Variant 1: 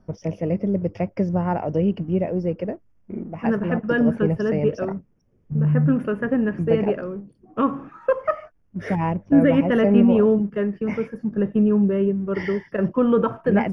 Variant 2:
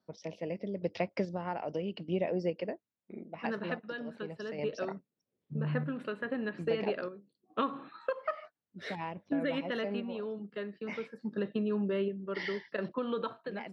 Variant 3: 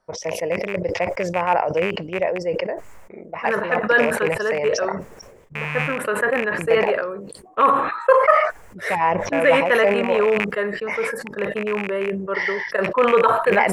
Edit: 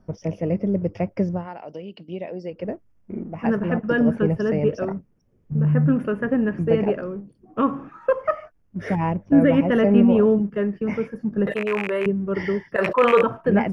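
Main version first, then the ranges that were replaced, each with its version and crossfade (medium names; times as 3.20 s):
1
1.38–2.59 s: from 2, crossfade 0.24 s
11.47–12.06 s: from 3
12.76–13.23 s: from 3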